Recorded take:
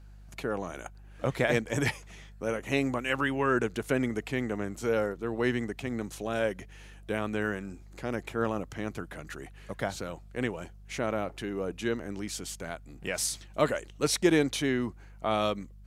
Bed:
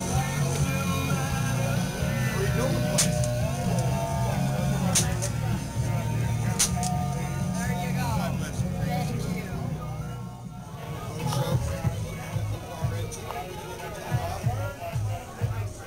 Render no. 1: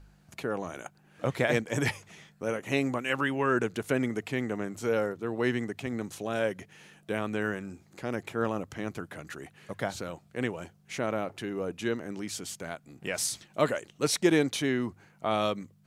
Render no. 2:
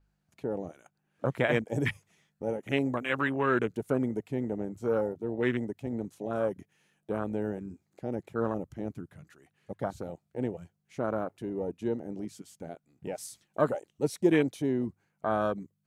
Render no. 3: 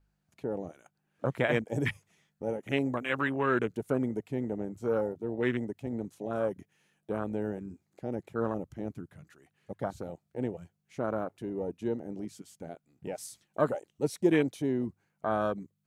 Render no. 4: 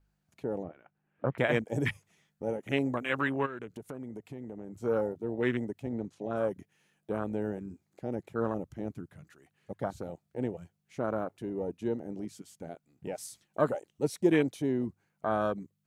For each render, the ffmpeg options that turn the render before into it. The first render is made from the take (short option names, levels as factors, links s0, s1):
-af "bandreject=f=50:t=h:w=4,bandreject=f=100:t=h:w=4"
-af "afwtdn=0.0282,adynamicequalizer=threshold=0.00158:dfrequency=7500:dqfactor=0.7:tfrequency=7500:tqfactor=0.7:attack=5:release=100:ratio=0.375:range=4:mode=boostabove:tftype=highshelf"
-af "volume=0.891"
-filter_complex "[0:a]asettb=1/sr,asplit=3[s0][s1][s2];[s0]atrim=end=0.634[s3];[s1]atrim=start=0.63:end=1.38,asetpts=PTS-STARTPTS,afade=t=in:d=0.004:c=qsin,afade=t=out:st=0.746:d=0.004:c=qsin,lowpass=f=2700:w=0.5412,lowpass=f=2700:w=1.3066[s4];[s2]atrim=start=1.376[s5];[s3][s4]acrossfade=d=0.004:c1=hsin:c2=qsin[s6];[s6][s5]acrossfade=d=0.004:c1=qsin:c2=hsin,asplit=3[s7][s8][s9];[s7]afade=t=out:st=3.45:d=0.02[s10];[s8]acompressor=threshold=0.0112:ratio=4:attack=3.2:release=140:knee=1:detection=peak,afade=t=in:st=3.45:d=0.02,afade=t=out:st=4.81:d=0.02[s11];[s9]afade=t=in:st=4.81:d=0.02[s12];[s10][s11][s12]amix=inputs=3:normalize=0,asettb=1/sr,asplit=3[s13][s14][s15];[s13]atrim=end=5.874[s16];[s14]atrim=start=5.87:end=6.37,asetpts=PTS-STARTPTS,afade=t=in:d=0.004:c=qsin,afade=t=out:st=0.496:d=0.004:c=qsin,lowpass=5900[s17];[s15]atrim=start=6.366[s18];[s16][s17]acrossfade=d=0.004:c1=hsin:c2=qsin[s19];[s19][s18]acrossfade=d=0.004:c1=qsin:c2=hsin"